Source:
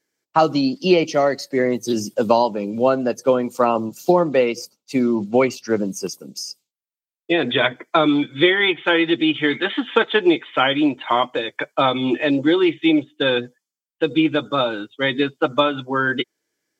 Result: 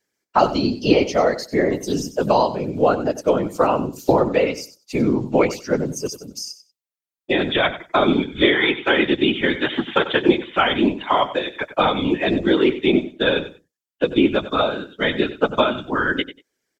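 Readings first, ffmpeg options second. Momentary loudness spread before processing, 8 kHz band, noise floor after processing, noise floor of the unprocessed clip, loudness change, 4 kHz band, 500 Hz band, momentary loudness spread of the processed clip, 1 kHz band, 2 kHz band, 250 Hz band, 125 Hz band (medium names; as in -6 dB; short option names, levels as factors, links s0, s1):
7 LU, 0.0 dB, under -85 dBFS, under -85 dBFS, -0.5 dB, -0.5 dB, 0.0 dB, 7 LU, 0.0 dB, -0.5 dB, -1.0 dB, +2.0 dB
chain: -af "afftfilt=real='hypot(re,im)*cos(2*PI*random(0))':imag='hypot(re,im)*sin(2*PI*random(1))':win_size=512:overlap=0.75,aecho=1:1:94|188:0.2|0.0359,volume=1.88"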